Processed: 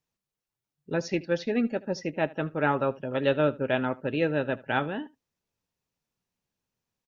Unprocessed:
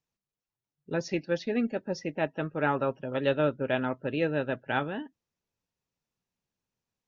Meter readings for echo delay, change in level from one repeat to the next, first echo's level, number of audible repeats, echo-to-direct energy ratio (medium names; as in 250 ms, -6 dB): 76 ms, no regular repeats, -21.5 dB, 1, -21.5 dB